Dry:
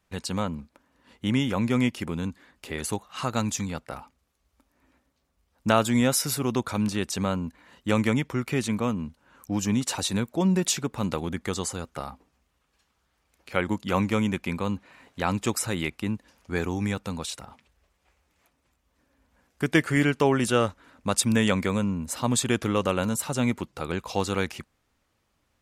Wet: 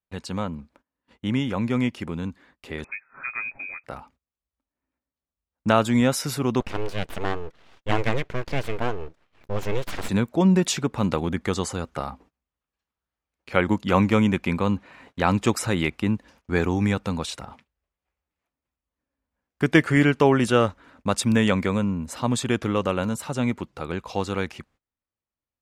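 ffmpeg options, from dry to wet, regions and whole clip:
-filter_complex "[0:a]asettb=1/sr,asplit=3[s0][s1][s2];[s0]atrim=end=2.844[s3];[s1]atrim=start=2.84:end=3.84,asetpts=PTS-STARTPTS,afade=t=in:d=0.004:c=qsin,afade=t=out:st=0.996:d=0.004:c=qsin,equalizer=f=670:w=0.37:g=-8,aecho=1:1:7.3:0.41,atrim=end_sample=44100,lowpass=f=2200:t=q:w=0.5098,lowpass=f=2200:t=q:w=0.6013,lowpass=f=2200:t=q:w=0.9,lowpass=f=2200:t=q:w=2.563,afreqshift=-2600[s4];[s2]atrim=start=3.836[s5];[s3][s4]acrossfade=d=0.004:c1=hsin:c2=qsin[s6];[s6][s5]acrossfade=d=0.004:c1=qsin:c2=hsin,asettb=1/sr,asplit=3[s7][s8][s9];[s7]atrim=end=6.604[s10];[s8]atrim=start=6.6:end=10.09,asetpts=PTS-STARTPTS,afade=t=in:d=0.004:c=qsin,afade=t=out:st=3.486:d=0.004:c=qsin,highpass=f=170:p=1,highshelf=f=7000:g=-11,aeval=exprs='abs(val(0))':c=same[s11];[s9]atrim=start=10.086[s12];[s10][s11]acrossfade=d=0.004:c1=hsin:c2=qsin[s13];[s13][s12]acrossfade=d=0.004:c1=qsin:c2=hsin,lowpass=f=3600:p=1,agate=range=0.0794:threshold=0.00158:ratio=16:detection=peak,dynaudnorm=f=920:g=13:m=3.76"

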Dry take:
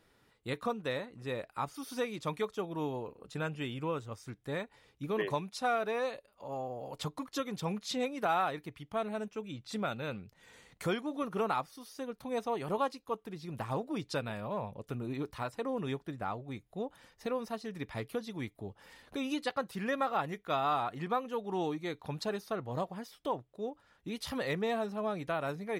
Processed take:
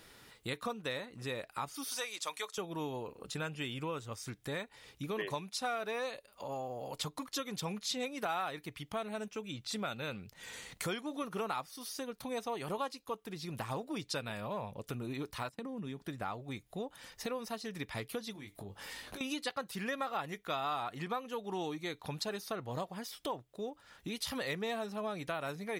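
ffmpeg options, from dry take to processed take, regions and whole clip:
-filter_complex "[0:a]asettb=1/sr,asplit=3[s0][s1][s2];[s0]atrim=end=1.914[s3];[s1]atrim=start=1.91:end=2.58,asetpts=PTS-STARTPTS,afade=t=in:d=0.004:c=qsin,afade=t=out:st=0.666:d=0.004:c=qsin,highpass=650,equalizer=f=7400:w=0.87:g=6.5[s4];[s2]atrim=start=2.576[s5];[s3][s4]acrossfade=d=0.004:c1=hsin:c2=qsin[s6];[s6][s5]acrossfade=d=0.004:c1=qsin:c2=hsin,asettb=1/sr,asplit=3[s7][s8][s9];[s7]atrim=end=15.494[s10];[s8]atrim=start=15.49:end=16.02,asetpts=PTS-STARTPTS,afade=t=in:d=0.004:c=qsin,afade=t=out:st=0.526:d=0.004:c=qsin,agate=range=0.0224:threshold=0.00447:ratio=3:release=100:detection=peak,equalizer=f=200:t=o:w=1.1:g=14.5,acompressor=threshold=0.0112:ratio=5:attack=3.2:release=140:knee=1:detection=peak[s11];[s9]atrim=start=16.016[s12];[s10][s11]acrossfade=d=0.004:c1=hsin:c2=qsin[s13];[s13][s12]acrossfade=d=0.004:c1=qsin:c2=hsin,asettb=1/sr,asplit=3[s14][s15][s16];[s14]atrim=end=18.334[s17];[s15]atrim=start=18.33:end=19.21,asetpts=PTS-STARTPTS,afade=t=in:d=0.004:c=qsin,afade=t=out:st=0.876:d=0.004:c=qsin,acompressor=threshold=0.00447:ratio=16:attack=3.2:release=140:knee=1:detection=peak,asplit=2[s18][s19];[s19]adelay=20,volume=0.501[s20];[s18][s20]amix=inputs=2:normalize=0,atrim=end_sample=38808[s21];[s16]atrim=start=19.206[s22];[s17][s21]acrossfade=d=0.004:c1=hsin:c2=qsin[s23];[s23][s22]acrossfade=d=0.004:c1=qsin:c2=hsin,highshelf=f=2000:g=9,acompressor=threshold=0.00251:ratio=2,volume=2.24"

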